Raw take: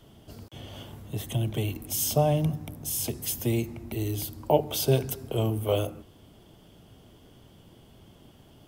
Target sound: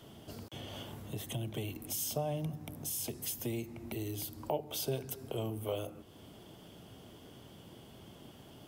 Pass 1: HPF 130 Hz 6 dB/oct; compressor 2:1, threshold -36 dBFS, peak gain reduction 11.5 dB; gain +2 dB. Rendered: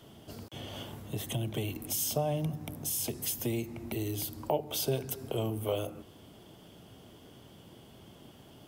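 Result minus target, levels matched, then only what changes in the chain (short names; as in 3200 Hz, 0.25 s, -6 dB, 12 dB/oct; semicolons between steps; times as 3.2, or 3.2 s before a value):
compressor: peak gain reduction -4.5 dB
change: compressor 2:1, threshold -45 dBFS, peak gain reduction 16 dB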